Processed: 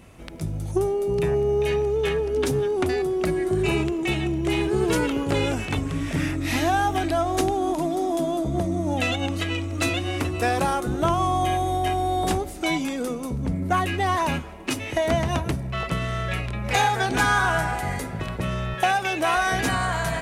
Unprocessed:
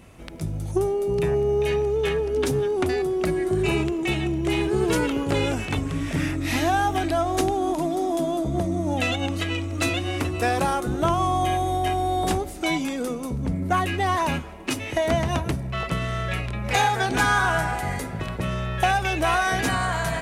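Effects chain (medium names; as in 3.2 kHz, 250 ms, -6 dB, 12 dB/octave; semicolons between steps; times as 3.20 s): 18.74–19.37 s: high-pass 190 Hz 12 dB/octave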